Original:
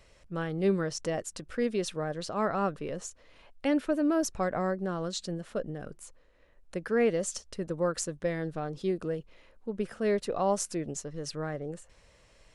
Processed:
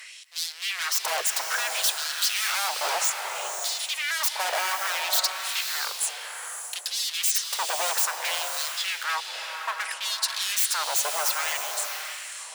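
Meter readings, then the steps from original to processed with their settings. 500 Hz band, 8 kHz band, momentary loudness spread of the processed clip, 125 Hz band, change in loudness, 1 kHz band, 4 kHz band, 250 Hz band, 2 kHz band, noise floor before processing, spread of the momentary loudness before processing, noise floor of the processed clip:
-8.5 dB, +14.0 dB, 9 LU, under -40 dB, +6.0 dB, +6.5 dB, +18.5 dB, under -30 dB, +12.5 dB, -61 dBFS, 12 LU, -39 dBFS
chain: in parallel at -0.5 dB: vocal rider within 3 dB; on the sum: tube stage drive 24 dB, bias 0.25; wavefolder -33.5 dBFS; tape echo 0.341 s, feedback 77%, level -18 dB, low-pass 2400 Hz; LFO high-pass sine 0.61 Hz 700–4200 Hz; HPF 400 Hz 24 dB/oct; high shelf 6700 Hz +10.5 dB; bloom reverb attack 0.61 s, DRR 4 dB; gain +8.5 dB

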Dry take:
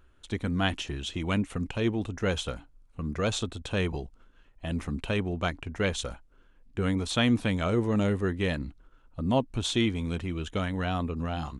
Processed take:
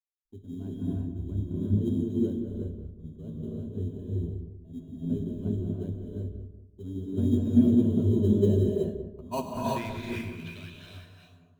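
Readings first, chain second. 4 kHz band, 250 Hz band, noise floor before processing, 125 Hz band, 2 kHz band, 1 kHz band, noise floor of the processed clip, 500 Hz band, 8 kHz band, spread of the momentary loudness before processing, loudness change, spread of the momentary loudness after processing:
under -15 dB, +2.5 dB, -59 dBFS, +1.5 dB, under -10 dB, -5.0 dB, -57 dBFS, -1.0 dB, under -10 dB, 11 LU, +1.0 dB, 20 LU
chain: ending faded out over 1.95 s; gate with hold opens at -47 dBFS; bell 340 Hz -2.5 dB 1.9 oct; low-pass sweep 310 Hz -> 7100 Hz, 8.11–11.21; flange 1.4 Hz, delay 8.7 ms, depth 3.9 ms, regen -59%; ripple EQ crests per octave 1.5, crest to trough 10 dB; in parallel at -11 dB: sample-rate reducer 3500 Hz, jitter 0%; on the sum: darkening echo 0.191 s, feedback 57%, low-pass 1400 Hz, level -5 dB; non-linear reverb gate 0.4 s rising, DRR -3 dB; three-band expander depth 100%; gain -7 dB

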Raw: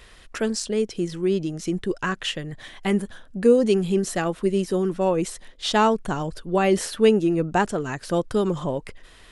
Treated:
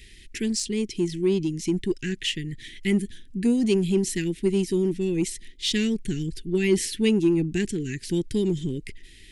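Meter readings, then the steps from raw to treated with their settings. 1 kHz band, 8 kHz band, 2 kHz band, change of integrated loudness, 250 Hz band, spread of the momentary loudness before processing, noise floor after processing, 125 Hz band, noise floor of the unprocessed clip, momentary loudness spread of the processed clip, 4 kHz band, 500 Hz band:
under -20 dB, +1.5 dB, -4.0 dB, -2.0 dB, +0.5 dB, 11 LU, -48 dBFS, +0.5 dB, -50 dBFS, 9 LU, +0.5 dB, -5.0 dB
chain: elliptic band-stop 370–2000 Hz, stop band 40 dB; in parallel at -12 dB: hard clip -24 dBFS, distortion -9 dB

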